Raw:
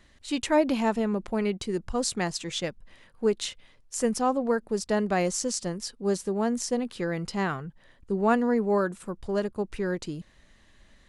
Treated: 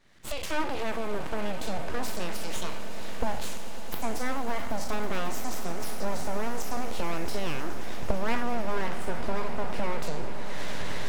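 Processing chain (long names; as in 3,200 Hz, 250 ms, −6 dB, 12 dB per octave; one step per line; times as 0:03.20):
peak hold with a decay on every bin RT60 0.51 s
camcorder AGC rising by 50 dB per second
high-pass filter 43 Hz 12 dB per octave
high-shelf EQ 4,700 Hz −8 dB
full-wave rectification
on a send: echo that builds up and dies away 110 ms, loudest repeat 8, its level −18 dB
on the sum: level −4.5 dB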